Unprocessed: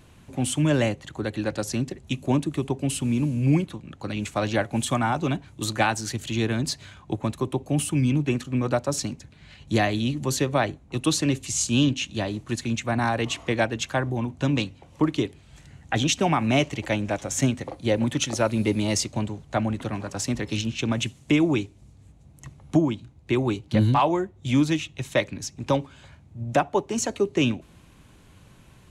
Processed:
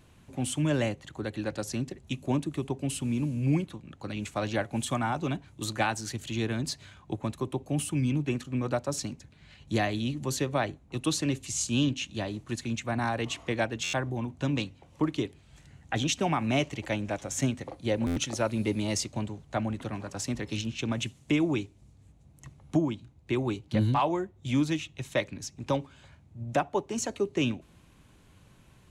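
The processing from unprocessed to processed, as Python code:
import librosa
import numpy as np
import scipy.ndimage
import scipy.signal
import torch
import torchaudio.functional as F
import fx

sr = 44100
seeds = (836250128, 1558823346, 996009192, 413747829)

y = fx.buffer_glitch(x, sr, at_s=(13.83, 18.06), block=512, repeats=8)
y = F.gain(torch.from_numpy(y), -5.5).numpy()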